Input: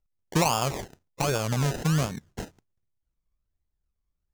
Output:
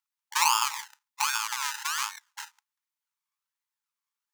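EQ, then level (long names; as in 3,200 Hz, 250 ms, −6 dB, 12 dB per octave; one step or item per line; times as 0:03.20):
linear-phase brick-wall high-pass 820 Hz
+4.0 dB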